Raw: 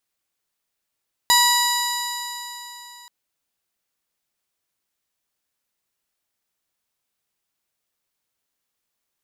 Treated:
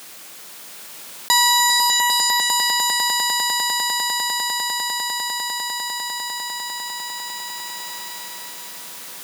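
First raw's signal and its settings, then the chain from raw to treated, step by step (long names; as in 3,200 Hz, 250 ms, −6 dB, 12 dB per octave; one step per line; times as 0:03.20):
stiff-string partials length 1.78 s, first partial 965 Hz, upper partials −4/−13/−1/−4/−19.5/−3/−12/−18/−16.5/−9 dB, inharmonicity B 0.0018, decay 3.44 s, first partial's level −16.5 dB
high-pass filter 150 Hz 24 dB per octave
echo that builds up and dies away 100 ms, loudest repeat 8, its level −10 dB
envelope flattener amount 70%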